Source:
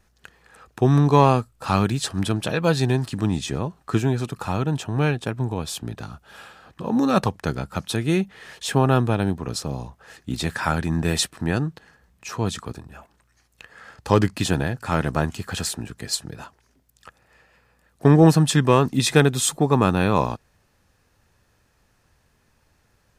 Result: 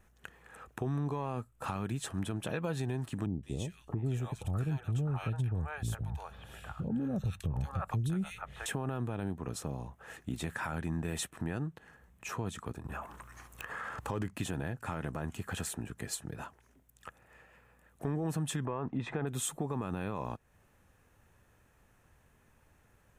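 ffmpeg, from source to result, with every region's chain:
-filter_complex "[0:a]asettb=1/sr,asplit=3[a][b][c];[a]atrim=end=3.264[d];[b]atrim=start=3.26:end=8.66,asetpts=PTS-STARTPTS,afade=t=in:d=0.004:c=qsin,afade=t=out:st=5.396:d=0.004:c=qsin,asubboost=boost=9.5:cutoff=110,bandreject=f=1k:w=13,acrossover=split=640|2100[e][f][g];[g]adelay=170[h];[f]adelay=660[i];[e][i][h]amix=inputs=3:normalize=0,atrim=end_sample=238140[j];[c]atrim=start=8.656[k];[d][j]acrossfade=d=0.004:c1=hsin:c2=qsin[l];[l][k]acrossfade=d=0.004:c1=qsin:c2=hsin,asettb=1/sr,asplit=3[m][n][o];[m]atrim=end=12.854[p];[n]atrim=start=12.85:end=14.09,asetpts=PTS-STARTPTS,afade=t=in:d=0.004:c=qsin,afade=t=out:st=1.236:d=0.004:c=qsin,equalizer=f=1.1k:t=o:w=0.66:g=8.5,acompressor=threshold=-46dB:ratio=3:attack=3.2:release=140:knee=1:detection=peak,aeval=exprs='0.0708*sin(PI/2*2.82*val(0)/0.0708)':c=same[q];[o]atrim=start=14.086[r];[p][q]acrossfade=d=0.004:c1=hsin:c2=qsin[s];[s][r]acrossfade=d=0.004:c1=qsin:c2=hsin,asettb=1/sr,asplit=3[t][u][v];[t]atrim=end=18.654[w];[u]atrim=start=18.65:end=19.27,asetpts=PTS-STARTPTS,afade=t=in:d=0.004:c=qsin,afade=t=out:st=0.616:d=0.004:c=qsin,lowpass=2.1k,equalizer=f=820:w=1.1:g=5.5[x];[v]atrim=start=19.266[y];[w][x]acrossfade=d=0.004:c1=hsin:c2=qsin[z];[z][y]acrossfade=d=0.004:c1=qsin:c2=hsin,equalizer=f=4.7k:w=2:g=-12.5,alimiter=limit=-13.5dB:level=0:latency=1:release=42,acompressor=threshold=-37dB:ratio=2,volume=-2dB"

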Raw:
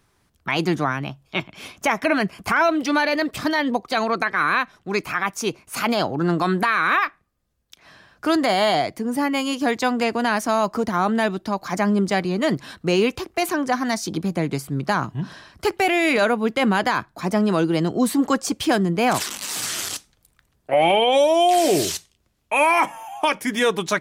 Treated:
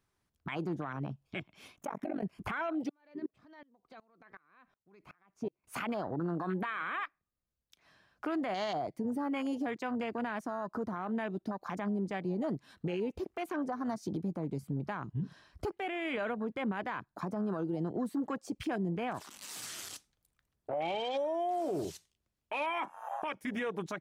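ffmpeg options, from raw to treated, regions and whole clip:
-filter_complex "[0:a]asettb=1/sr,asplit=3[a][b][c];[a]atrim=end=1.764[d];[b]atrim=start=1.76:end=2.23,asetpts=PTS-STARTPTS,afade=t=in:d=0.004:c=qsin,afade=t=out:st=0.466:d=0.004:c=qsin,equalizer=f=4.8k:w=2.4:g=-9.5,acompressor=threshold=-21dB:ratio=8:attack=3.2:release=140:knee=1:detection=peak,tremolo=f=47:d=0.947[e];[c]atrim=start=2.226[f];[d][e]acrossfade=d=0.004:c1=hsin:c2=qsin[g];[g][f]acrossfade=d=0.004:c1=qsin:c2=hsin,asettb=1/sr,asplit=3[h][i][j];[h]atrim=end=2.894[k];[i]atrim=start=2.89:end=5.64,asetpts=PTS-STARTPTS,afade=t=in:d=0.004:c=qsin,afade=t=out:st=2.746:d=0.004:c=qsin,lowpass=f=1.3k:p=1,acompressor=threshold=-27dB:ratio=16:attack=3.2:release=140:knee=1:detection=peak,aeval=exprs='val(0)*pow(10,-27*if(lt(mod(-2.7*n/s,1),2*abs(-2.7)/1000),1-mod(-2.7*n/s,1)/(2*abs(-2.7)/1000),(mod(-2.7*n/s,1)-2*abs(-2.7)/1000)/(1-2*abs(-2.7)/1000))/20)':c=same[l];[j]atrim=start=5.636[m];[k][l]acrossfade=d=0.004:c1=hsin:c2=qsin[n];[n][m]acrossfade=d=0.004:c1=qsin:c2=hsin,afwtdn=0.0501,acompressor=threshold=-31dB:ratio=5,alimiter=level_in=3dB:limit=-24dB:level=0:latency=1:release=35,volume=-3dB"

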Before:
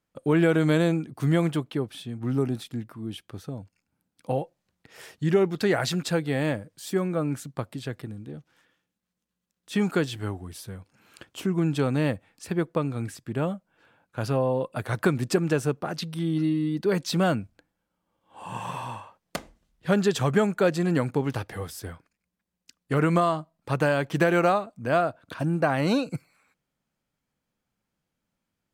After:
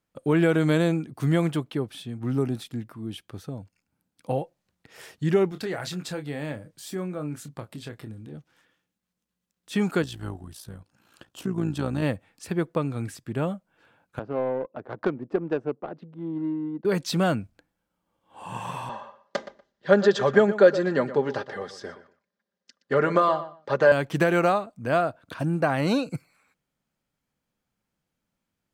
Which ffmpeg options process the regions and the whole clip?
-filter_complex "[0:a]asettb=1/sr,asplit=3[a][b][c];[a]atrim=end=5.494[d];[b]atrim=start=5.49:end=8.35,asetpts=PTS-STARTPTS,afade=t=in:d=0.004:c=qsin,afade=t=out:st=2.856:d=0.004:c=qsin,acompressor=threshold=-41dB:ratio=1.5:attack=3.2:release=140:knee=1:detection=peak,asplit=2[e][f];[f]adelay=27,volume=-9dB[g];[e][g]amix=inputs=2:normalize=0,atrim=end_sample=126126[h];[c]atrim=start=8.346[i];[d][h]acrossfade=d=0.004:c1=hsin:c2=qsin[j];[j][i]acrossfade=d=0.004:c1=qsin:c2=hsin,asettb=1/sr,asplit=3[k][l][m];[k]atrim=end=10.024[n];[l]atrim=start=10.02:end=12.03,asetpts=PTS-STARTPTS,afade=t=in:d=0.004:c=qsin,afade=t=out:st=2.006:d=0.004:c=qsin,equalizer=f=2.2k:w=4.7:g=-8.5,bandreject=f=440:w=7.2,tremolo=f=57:d=0.621[o];[m]atrim=start=12.026[p];[n][o]acrossfade=d=0.004:c1=hsin:c2=qsin[q];[q][p]acrossfade=d=0.004:c1=qsin:c2=hsin,asettb=1/sr,asplit=3[r][s][t];[r]atrim=end=14.194[u];[s]atrim=start=14.19:end=16.85,asetpts=PTS-STARTPTS,afade=t=in:d=0.004:c=qsin,afade=t=out:st=2.656:d=0.004:c=qsin,highpass=290,adynamicsmooth=sensitivity=0.5:basefreq=560[v];[t]atrim=start=16.846[w];[u][v]acrossfade=d=0.004:c1=hsin:c2=qsin[x];[x][w]acrossfade=d=0.004:c1=qsin:c2=hsin,asettb=1/sr,asplit=3[y][z][aa];[y]atrim=end=18.894[ab];[z]atrim=start=18.89:end=23.92,asetpts=PTS-STARTPTS,afade=t=in:d=0.004:c=qsin,afade=t=out:st=5.026:d=0.004:c=qsin,highpass=160,equalizer=f=170:t=q:w=4:g=-9,equalizer=f=530:t=q:w=4:g=9,equalizer=f=1.7k:t=q:w=4:g=5,equalizer=f=2.5k:t=q:w=4:g=-7,lowpass=f=5.8k:w=0.5412,lowpass=f=5.8k:w=1.3066,aecho=1:1:5:0.58,atrim=end_sample=221823,asplit=2[ac][ad];[ad]adelay=120,lowpass=f=3.7k:p=1,volume=-13.5dB,asplit=2[ae][af];[af]adelay=120,lowpass=f=3.7k:p=1,volume=0.19[ag];[ac][ae][ag]amix=inputs=3:normalize=0,atrim=end_sample=221823[ah];[aa]atrim=start=23.916[ai];[ab][ah]acrossfade=d=0.004:c1=hsin:c2=qsin[aj];[aj][ai]acrossfade=d=0.004:c1=qsin:c2=hsin"

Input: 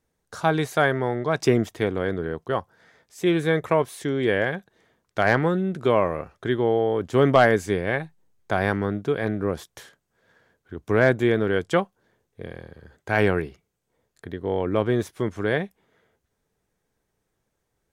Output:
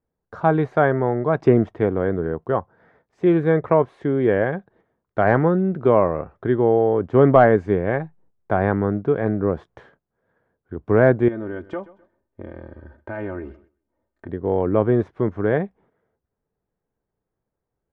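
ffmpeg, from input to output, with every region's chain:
-filter_complex "[0:a]asettb=1/sr,asplit=3[a][b][c];[a]atrim=end=11.284[d];[b]atrim=start=11.28:end=14.29,asetpts=PTS-STARTPTS,afade=t=in:d=0.004:c=qsin,afade=t=out:st=3.006:d=0.004:c=qsin,aecho=1:1:3.3:0.83,atrim=end_sample=132741,acompressor=threshold=-35dB:ratio=2.5:attack=3.2:release=140:knee=1:detection=peak,aecho=1:1:129|258|387:0.112|0.0348|0.0108,atrim=end_sample=132741[e];[c]atrim=start=14.286[f];[d][e]acrossfade=d=0.004:c1=hsin:c2=qsin[g];[g][f]acrossfade=d=0.004:c1=qsin:c2=hsin,agate=range=-9dB:threshold=-57dB:ratio=16:detection=peak,lowpass=1.2k,volume=4.5dB"

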